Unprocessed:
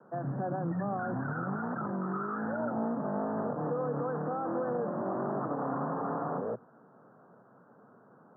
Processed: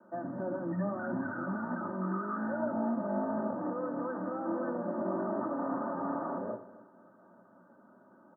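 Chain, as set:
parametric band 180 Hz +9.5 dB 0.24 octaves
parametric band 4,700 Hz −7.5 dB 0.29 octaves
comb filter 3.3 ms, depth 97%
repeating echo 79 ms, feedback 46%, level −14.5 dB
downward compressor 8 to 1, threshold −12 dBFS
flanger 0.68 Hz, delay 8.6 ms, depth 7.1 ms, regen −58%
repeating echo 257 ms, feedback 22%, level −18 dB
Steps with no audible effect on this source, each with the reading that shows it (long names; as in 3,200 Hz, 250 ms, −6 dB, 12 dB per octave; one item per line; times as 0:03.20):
parametric band 4,700 Hz: nothing at its input above 1,600 Hz
downward compressor, threshold −12 dBFS: peak of its input −18.0 dBFS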